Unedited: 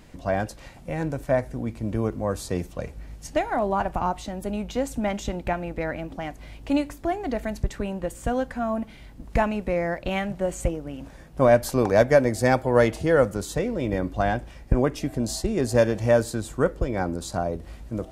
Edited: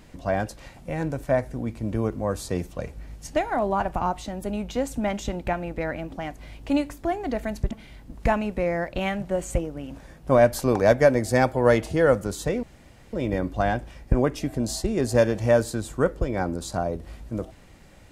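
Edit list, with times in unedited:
7.71–8.81 s: delete
13.73 s: insert room tone 0.50 s

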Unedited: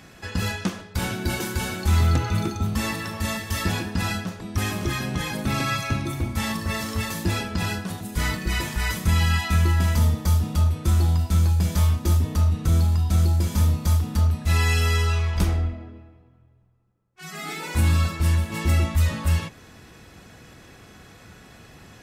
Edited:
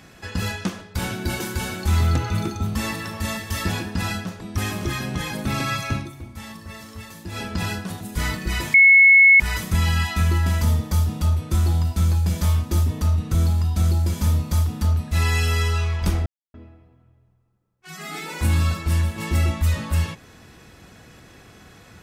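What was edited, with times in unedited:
5.97–7.44 s: dip -11 dB, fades 0.13 s
8.74 s: add tone 2.19 kHz -8 dBFS 0.66 s
15.60–15.88 s: mute

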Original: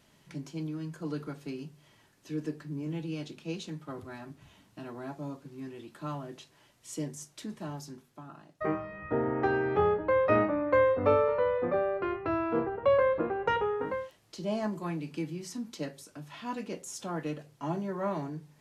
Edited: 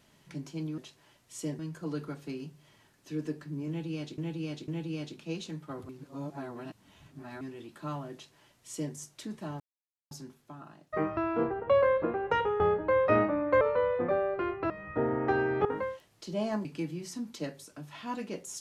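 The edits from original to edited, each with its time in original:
2.87–3.37 s: loop, 3 plays
4.08–5.60 s: reverse
6.32–7.13 s: copy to 0.78 s
7.79 s: insert silence 0.51 s
8.85–9.80 s: swap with 12.33–13.76 s
10.81–11.24 s: delete
14.76–15.04 s: delete

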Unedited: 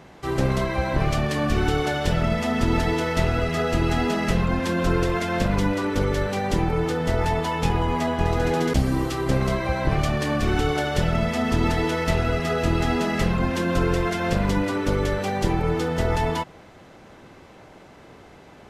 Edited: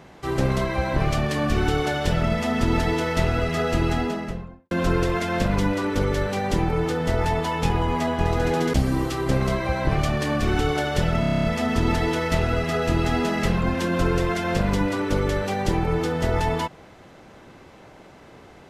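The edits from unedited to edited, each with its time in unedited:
3.78–4.71 s: studio fade out
11.20 s: stutter 0.03 s, 9 plays

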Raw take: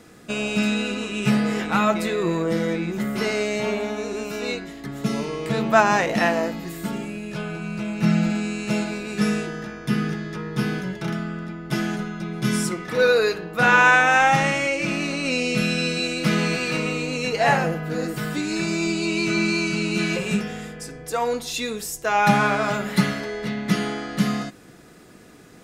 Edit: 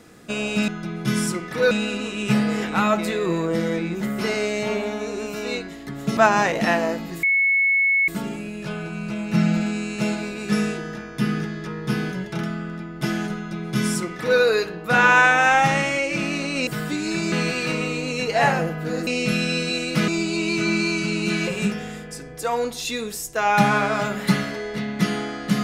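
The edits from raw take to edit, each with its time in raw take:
5.14–5.71 s: delete
6.77 s: add tone 2.2 kHz -15.5 dBFS 0.85 s
12.05–13.08 s: copy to 0.68 s
15.36–16.37 s: swap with 18.12–18.77 s

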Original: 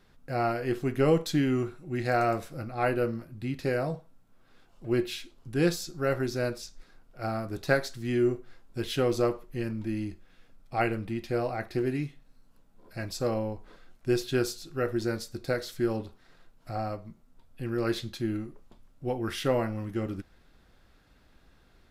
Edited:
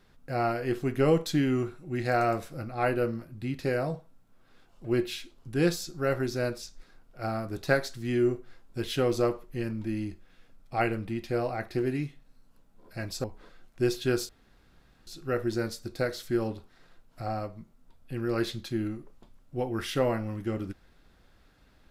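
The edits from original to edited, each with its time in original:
13.24–13.51 s: delete
14.56 s: insert room tone 0.78 s

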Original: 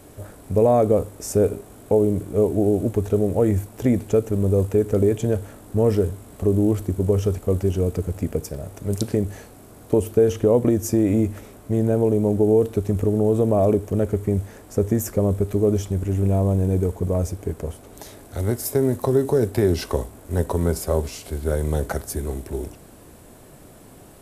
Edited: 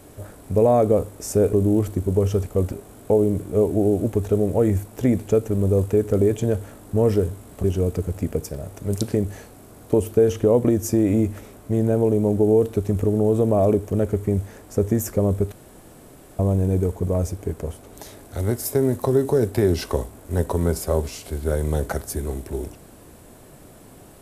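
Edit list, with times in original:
6.45–7.64 s: move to 1.53 s
15.52–16.39 s: room tone

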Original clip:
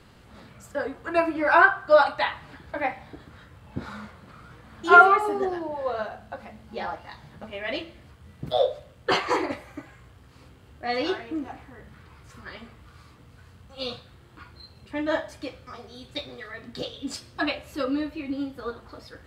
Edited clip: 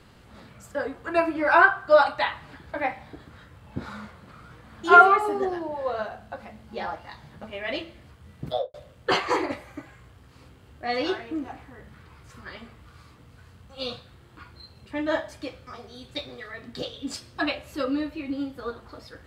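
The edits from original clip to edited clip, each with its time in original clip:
8.46–8.74 s: studio fade out

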